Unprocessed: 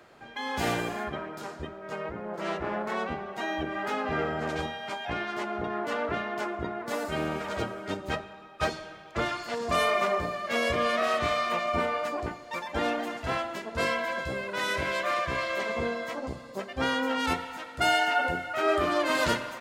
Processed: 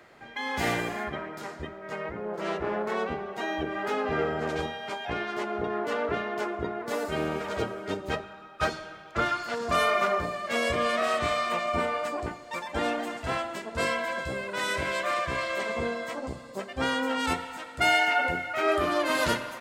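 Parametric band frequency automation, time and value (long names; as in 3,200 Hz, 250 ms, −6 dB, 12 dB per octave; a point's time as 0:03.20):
parametric band +7.5 dB 0.25 octaves
2,000 Hz
from 0:02.17 430 Hz
from 0:08.24 1,400 Hz
from 0:10.24 8,100 Hz
from 0:17.79 2,200 Hz
from 0:18.72 11,000 Hz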